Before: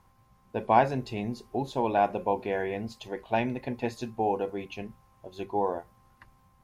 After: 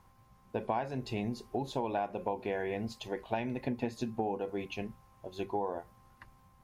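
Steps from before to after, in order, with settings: 3.64–4.38 s: peaking EQ 210 Hz +6 dB 1.6 oct; compression 6:1, threshold -30 dBFS, peak gain reduction 14.5 dB

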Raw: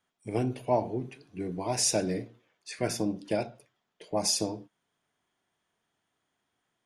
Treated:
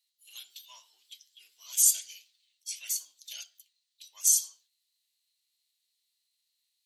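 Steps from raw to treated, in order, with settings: Chebyshev high-pass 2.9 kHz, order 3; formant shift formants +4 st; trim +6.5 dB

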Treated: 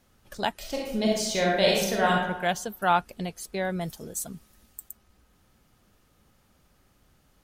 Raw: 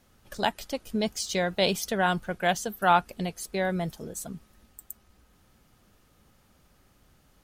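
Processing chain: 0.58–2.11 s: reverb throw, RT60 0.96 s, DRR -3.5 dB; 3.81–4.89 s: treble shelf 4.4 kHz +8 dB; trim -1.5 dB

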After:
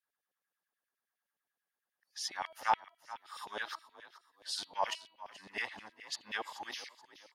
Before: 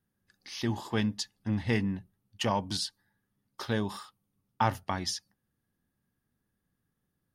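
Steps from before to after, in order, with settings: reverse the whole clip; de-hum 325.9 Hz, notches 14; on a send: frequency-shifting echo 429 ms, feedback 38%, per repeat +42 Hz, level -16 dB; on the sum: LFO high-pass saw down 9.5 Hz 510–2800 Hz; trim -6 dB

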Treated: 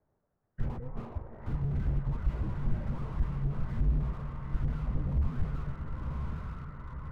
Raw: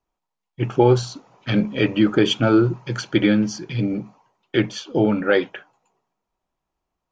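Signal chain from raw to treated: de-hum 58.54 Hz, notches 5; compressor with a negative ratio -23 dBFS, ratio -0.5; added noise brown -67 dBFS; mistuned SSB -350 Hz 210–2100 Hz; distance through air 400 m; echo that smears into a reverb 951 ms, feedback 54%, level -9 dB; reverberation RT60 2.4 s, pre-delay 100 ms, DRR 17.5 dB; slew-rate limiter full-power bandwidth 4.6 Hz

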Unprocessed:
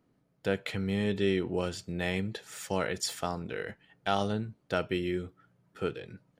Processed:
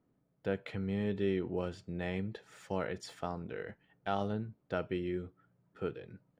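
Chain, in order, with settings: low-pass 1.5 kHz 6 dB/octave; trim -4 dB

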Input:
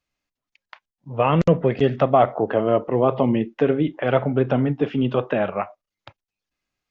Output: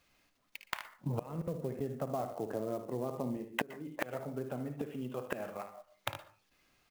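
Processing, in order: 1.26–3.37 s: bass shelf 410 Hz +7.5 dB; early reflections 55 ms -11.5 dB, 75 ms -12 dB; low-pass that closes with the level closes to 1.7 kHz, closed at -14 dBFS; inverted gate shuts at -18 dBFS, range -30 dB; compression 12:1, threshold -43 dBFS, peak gain reduction 19 dB; bass shelf 130 Hz -4.5 dB; reverberation RT60 0.35 s, pre-delay 112 ms, DRR 16.5 dB; sampling jitter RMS 0.022 ms; trim +12 dB

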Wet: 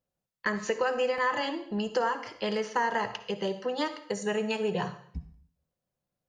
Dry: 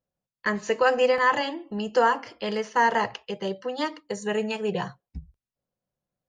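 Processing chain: compression 5:1, threshold -25 dBFS, peak gain reduction 9 dB; on a send: reverberation RT60 0.60 s, pre-delay 47 ms, DRR 11 dB

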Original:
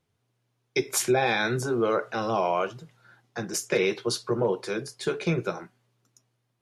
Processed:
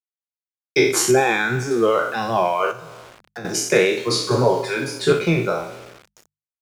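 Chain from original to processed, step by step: spectral sustain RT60 1.62 s; reverb removal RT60 1.5 s; 4.30–5.13 s: comb 7.3 ms, depth 91%; bit crusher 8-bit; 1.11–1.71 s: graphic EQ with 31 bands 630 Hz -7 dB, 4 kHz -10 dB, 10 kHz -12 dB; 2.71–3.45 s: compression 5:1, threshold -39 dBFS, peak gain reduction 11.5 dB; treble shelf 10 kHz -10.5 dB; hum notches 50/100/150/200 Hz; trim +6.5 dB

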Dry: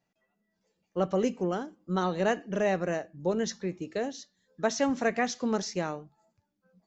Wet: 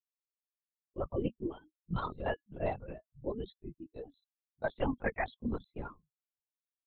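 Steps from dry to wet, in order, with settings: expander on every frequency bin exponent 3; LPC vocoder at 8 kHz whisper; 5.48–5.88 s: three bands compressed up and down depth 70%; trim -1.5 dB

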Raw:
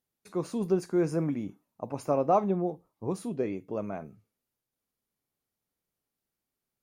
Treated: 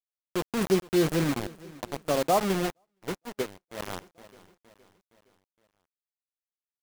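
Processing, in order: 0.57–1.32 s: tilt shelf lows +3.5 dB, about 770 Hz; bit crusher 5-bit; feedback delay 466 ms, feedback 49%, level -21 dB; 2.70–3.80 s: upward expansion 2.5:1, over -45 dBFS

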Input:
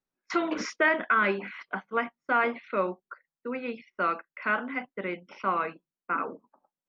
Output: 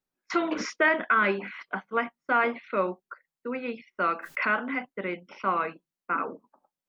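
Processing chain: 4.18–4.95 s: swell ahead of each attack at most 57 dB/s; trim +1 dB

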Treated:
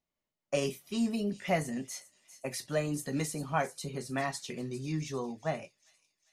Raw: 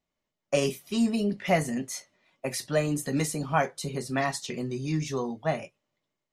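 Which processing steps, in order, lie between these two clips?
feedback echo behind a high-pass 400 ms, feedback 47%, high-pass 4.7 kHz, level -12 dB; trim -5.5 dB

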